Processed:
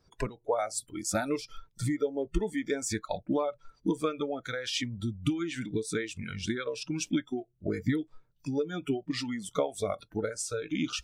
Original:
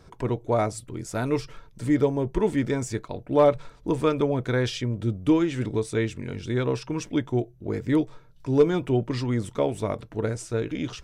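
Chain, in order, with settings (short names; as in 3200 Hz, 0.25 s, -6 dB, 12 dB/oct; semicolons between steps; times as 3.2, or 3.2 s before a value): compressor 12:1, threshold -29 dBFS, peak gain reduction 16.5 dB; spectral noise reduction 21 dB; harmonic-percussive split percussive +6 dB; gain +1.5 dB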